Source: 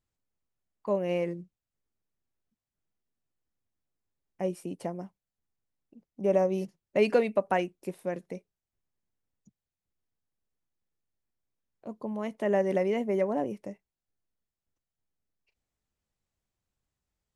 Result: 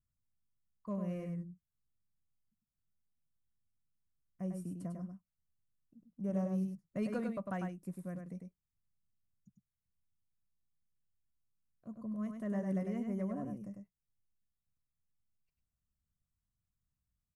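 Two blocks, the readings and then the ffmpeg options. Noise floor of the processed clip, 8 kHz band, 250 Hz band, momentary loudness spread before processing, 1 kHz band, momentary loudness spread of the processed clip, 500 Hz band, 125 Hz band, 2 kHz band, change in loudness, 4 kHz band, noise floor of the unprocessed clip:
under -85 dBFS, no reading, -3.5 dB, 17 LU, -14.0 dB, 14 LU, -16.5 dB, -1.0 dB, -14.5 dB, -10.0 dB, under -15 dB, under -85 dBFS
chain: -filter_complex "[0:a]firequalizer=gain_entry='entry(160,0);entry(390,-19);entry(1200,-9);entry(2500,-22);entry(8200,-8)':delay=0.05:min_phase=1,asplit=2[s0][s1];[s1]volume=31.6,asoftclip=hard,volume=0.0316,volume=0.422[s2];[s0][s2]amix=inputs=2:normalize=0,asuperstop=centerf=860:order=4:qfactor=5,aecho=1:1:100:0.562,volume=0.708"

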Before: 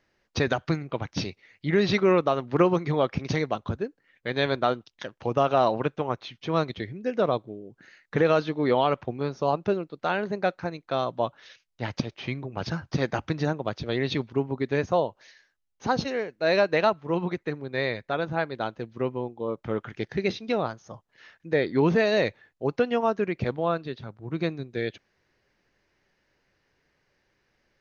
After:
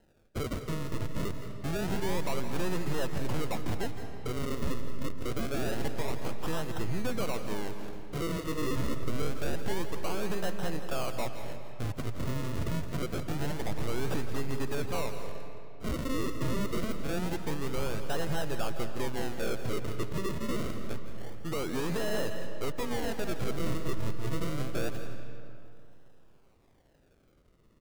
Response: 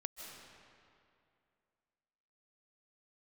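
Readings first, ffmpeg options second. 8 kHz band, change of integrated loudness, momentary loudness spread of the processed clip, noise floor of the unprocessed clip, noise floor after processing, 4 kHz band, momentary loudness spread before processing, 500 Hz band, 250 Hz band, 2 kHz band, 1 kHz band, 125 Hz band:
no reading, -8.0 dB, 6 LU, -74 dBFS, -62 dBFS, -5.5 dB, 11 LU, -10.5 dB, -6.0 dB, -8.5 dB, -10.5 dB, -3.5 dB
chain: -filter_complex "[0:a]acompressor=threshold=0.0398:ratio=6,acrusher=samples=38:mix=1:aa=0.000001:lfo=1:lforange=38:lforate=0.26,asoftclip=type=hard:threshold=0.0168,aecho=1:1:168:0.224,asplit=2[s0][s1];[1:a]atrim=start_sample=2205,lowshelf=f=85:g=9.5[s2];[s1][s2]afir=irnorm=-1:irlink=0,volume=1.58[s3];[s0][s3]amix=inputs=2:normalize=0,volume=0.794"

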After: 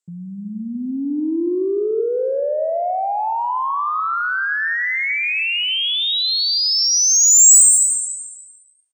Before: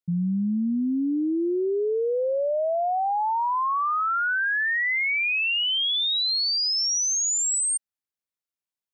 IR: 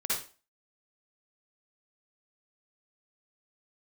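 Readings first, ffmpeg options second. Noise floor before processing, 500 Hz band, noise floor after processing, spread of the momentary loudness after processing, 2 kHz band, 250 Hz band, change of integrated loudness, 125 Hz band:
under -85 dBFS, +4.5 dB, -47 dBFS, 18 LU, +3.5 dB, +1.0 dB, +8.0 dB, no reading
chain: -filter_complex "[0:a]lowpass=f=7700:t=q:w=7.6,lowshelf=f=240:t=q:w=1.5:g=-8.5,aecho=1:1:290|580|870:0.237|0.0522|0.0115,acontrast=58,asplit=2[s0][s1];[1:a]atrim=start_sample=2205,adelay=124[s2];[s1][s2]afir=irnorm=-1:irlink=0,volume=0.158[s3];[s0][s3]amix=inputs=2:normalize=0,volume=0.631"

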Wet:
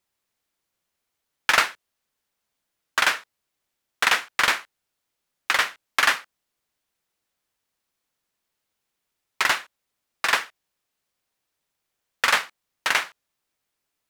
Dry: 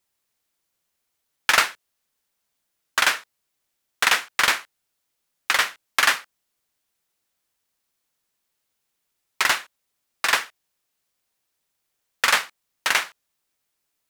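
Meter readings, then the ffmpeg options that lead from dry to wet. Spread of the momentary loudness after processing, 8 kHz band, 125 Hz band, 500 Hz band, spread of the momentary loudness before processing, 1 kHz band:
9 LU, -4.0 dB, no reading, 0.0 dB, 9 LU, -0.5 dB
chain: -af "highshelf=f=4800:g=-5.5"

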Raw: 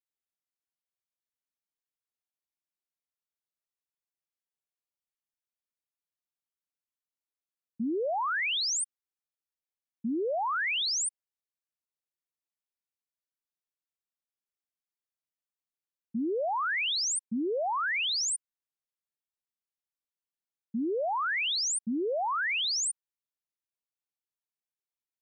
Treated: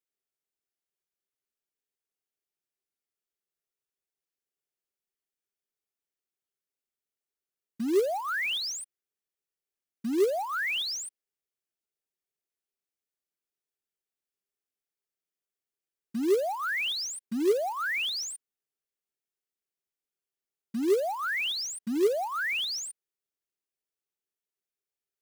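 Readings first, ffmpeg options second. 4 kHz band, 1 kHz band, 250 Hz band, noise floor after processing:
-1.5 dB, -2.5 dB, +2.0 dB, under -85 dBFS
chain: -filter_complex "[0:a]acrossover=split=5100[s0][s1];[s1]acompressor=threshold=0.00794:ratio=4:attack=1:release=60[s2];[s0][s2]amix=inputs=2:normalize=0,equalizer=f=100:t=o:w=0.33:g=-11,equalizer=f=400:t=o:w=0.33:g=11,equalizer=f=1000:t=o:w=0.33:g=-8,equalizer=f=4000:t=o:w=0.33:g=-3,acrusher=bits=4:mode=log:mix=0:aa=0.000001"

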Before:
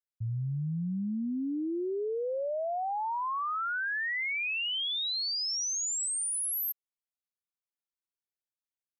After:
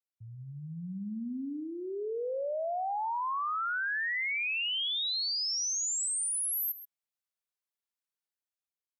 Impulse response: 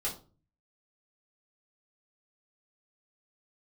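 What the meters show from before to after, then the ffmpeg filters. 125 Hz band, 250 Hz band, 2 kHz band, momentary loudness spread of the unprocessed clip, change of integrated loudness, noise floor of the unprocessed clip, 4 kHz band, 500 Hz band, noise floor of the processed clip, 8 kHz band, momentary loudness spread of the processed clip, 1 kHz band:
no reading, -5.0 dB, 0.0 dB, 5 LU, -0.5 dB, under -85 dBFS, 0.0 dB, -2.0 dB, under -85 dBFS, 0.0 dB, 12 LU, -0.5 dB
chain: -af "equalizer=f=340:t=o:w=0.4:g=-5,dynaudnorm=f=140:g=11:m=1.88,highpass=f=260:p=1,aecho=1:1:131:0.188,volume=0.531"

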